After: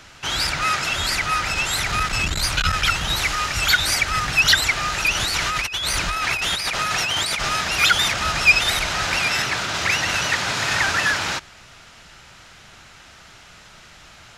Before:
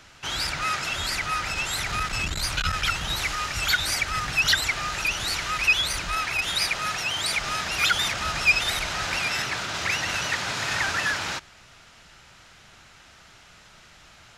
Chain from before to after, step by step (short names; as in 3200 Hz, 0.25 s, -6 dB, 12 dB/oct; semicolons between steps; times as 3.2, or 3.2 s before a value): 5.15–7.48 negative-ratio compressor -29 dBFS, ratio -1; gain +5.5 dB